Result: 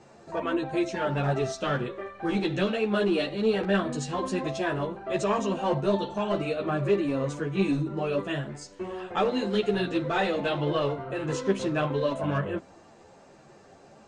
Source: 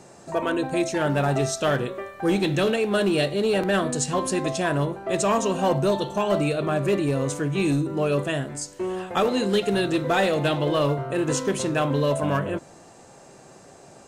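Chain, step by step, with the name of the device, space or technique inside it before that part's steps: string-machine ensemble chorus (ensemble effect; LPF 4600 Hz 12 dB/oct); gain -1 dB

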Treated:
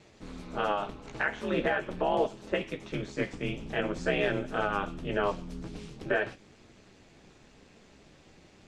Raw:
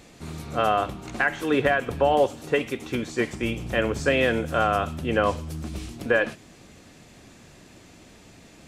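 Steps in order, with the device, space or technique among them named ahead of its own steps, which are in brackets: alien voice (ring modulator 100 Hz; flange 0.45 Hz, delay 8.3 ms, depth 8.2 ms, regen -42%); LPF 6100 Hz 12 dB/oct

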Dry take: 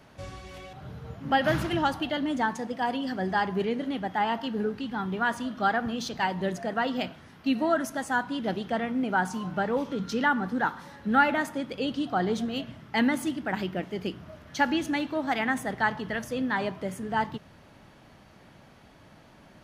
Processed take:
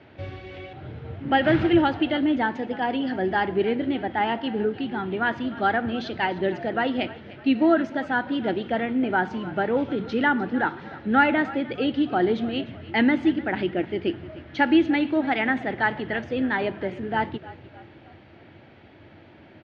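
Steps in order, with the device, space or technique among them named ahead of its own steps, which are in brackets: frequency-shifting delay pedal into a guitar cabinet (frequency-shifting echo 0.302 s, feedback 48%, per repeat -47 Hz, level -18 dB; speaker cabinet 88–3600 Hz, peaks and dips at 91 Hz +10 dB, 180 Hz -6 dB, 340 Hz +9 dB, 1100 Hz -8 dB, 2200 Hz +3 dB); gain +3.5 dB

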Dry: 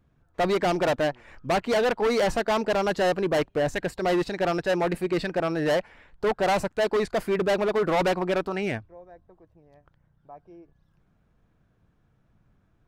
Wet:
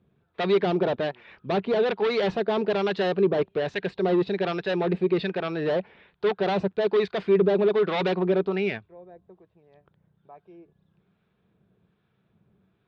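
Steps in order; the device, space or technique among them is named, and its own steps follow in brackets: guitar amplifier with harmonic tremolo (harmonic tremolo 1.2 Hz, depth 50%, crossover 870 Hz; soft clip -20 dBFS, distortion -19 dB; speaker cabinet 98–4300 Hz, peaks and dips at 190 Hz +8 dB, 280 Hz -4 dB, 400 Hz +10 dB, 2500 Hz +5 dB, 3600 Hz +8 dB)

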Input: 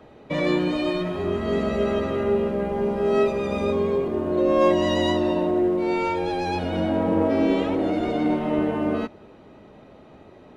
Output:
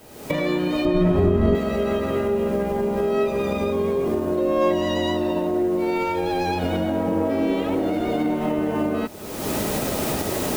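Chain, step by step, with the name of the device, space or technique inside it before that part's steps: cheap recorder with automatic gain (white noise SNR 30 dB; recorder AGC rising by 44 dB/s); 0.85–1.55 tilt -3 dB/oct; gain -1.5 dB

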